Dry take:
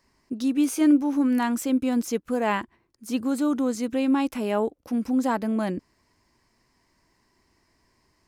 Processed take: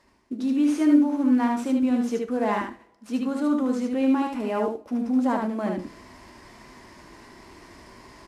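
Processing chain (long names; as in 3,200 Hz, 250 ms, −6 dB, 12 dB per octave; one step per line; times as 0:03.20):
variable-slope delta modulation 64 kbit/s
high-pass filter 880 Hz 6 dB per octave
spectral tilt −4 dB per octave
reversed playback
upward compression, threshold −33 dBFS
reversed playback
single-tap delay 75 ms −3.5 dB
coupled-rooms reverb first 0.32 s, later 1.6 s, from −27 dB, DRR 7.5 dB
level +1 dB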